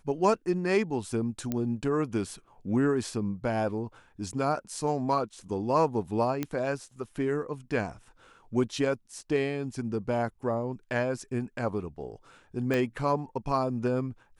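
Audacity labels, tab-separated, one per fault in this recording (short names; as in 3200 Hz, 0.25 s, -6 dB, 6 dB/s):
1.520000	1.520000	pop -17 dBFS
6.430000	6.430000	pop -16 dBFS
12.740000	12.740000	pop -16 dBFS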